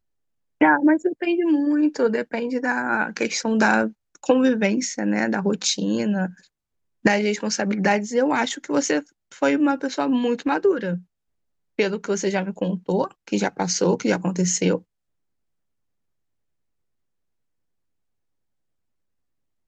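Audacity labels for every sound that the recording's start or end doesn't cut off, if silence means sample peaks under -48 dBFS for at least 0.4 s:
0.610000	6.470000	sound
7.040000	11.030000	sound
11.780000	14.820000	sound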